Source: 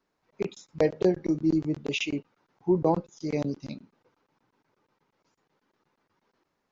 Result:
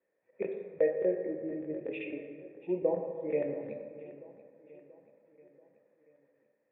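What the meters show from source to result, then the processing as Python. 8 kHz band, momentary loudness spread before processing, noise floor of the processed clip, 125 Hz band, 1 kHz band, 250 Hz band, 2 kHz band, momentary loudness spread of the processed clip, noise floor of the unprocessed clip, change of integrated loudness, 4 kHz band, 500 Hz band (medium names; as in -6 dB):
no reading, 12 LU, -77 dBFS, -16.0 dB, -13.0 dB, -10.5 dB, -8.5 dB, 17 LU, -79 dBFS, -6.0 dB, under -20 dB, -2.5 dB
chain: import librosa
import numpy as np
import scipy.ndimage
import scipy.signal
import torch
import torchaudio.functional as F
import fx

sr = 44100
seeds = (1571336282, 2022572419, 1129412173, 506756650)

p1 = fx.highpass(x, sr, hz=140.0, slope=6)
p2 = fx.rider(p1, sr, range_db=4, speed_s=0.5)
p3 = fx.formant_cascade(p2, sr, vowel='e')
p4 = p3 + fx.echo_feedback(p3, sr, ms=684, feedback_pct=53, wet_db=-18.0, dry=0)
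p5 = fx.rev_plate(p4, sr, seeds[0], rt60_s=2.0, hf_ratio=0.45, predelay_ms=0, drr_db=3.0)
y = p5 * 10.0 ** (4.5 / 20.0)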